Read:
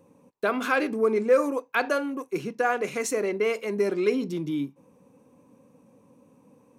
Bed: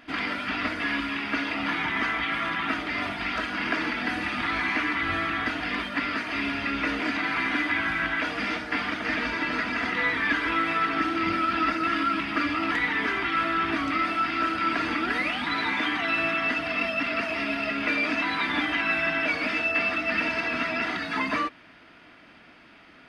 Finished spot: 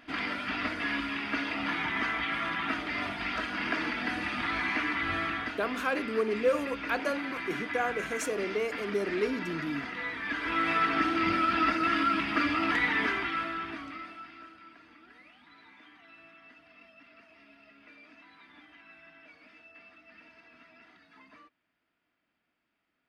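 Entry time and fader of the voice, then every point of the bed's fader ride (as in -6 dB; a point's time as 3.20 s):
5.15 s, -6.0 dB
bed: 5.29 s -4 dB
5.62 s -10.5 dB
10.23 s -10.5 dB
10.69 s -1.5 dB
13.03 s -1.5 dB
14.79 s -29 dB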